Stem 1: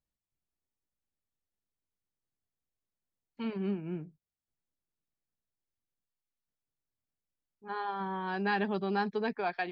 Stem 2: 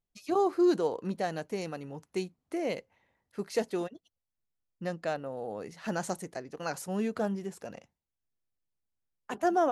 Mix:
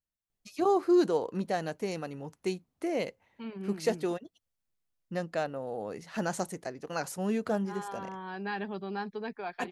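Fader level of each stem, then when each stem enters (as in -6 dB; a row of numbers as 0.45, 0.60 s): -5.0, +1.0 dB; 0.00, 0.30 s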